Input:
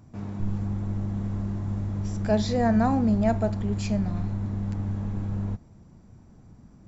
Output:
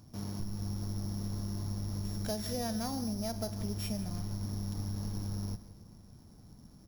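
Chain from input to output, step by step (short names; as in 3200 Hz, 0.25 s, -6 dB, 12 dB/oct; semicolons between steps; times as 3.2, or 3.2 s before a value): sample sorter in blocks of 8 samples; high shelf 3700 Hz +7.5 dB; compressor 10:1, threshold -27 dBFS, peak gain reduction 11.5 dB; echo 0.167 s -16.5 dB; on a send at -17 dB: reverb RT60 2.7 s, pre-delay 47 ms; on the sum: gain -4.5 dB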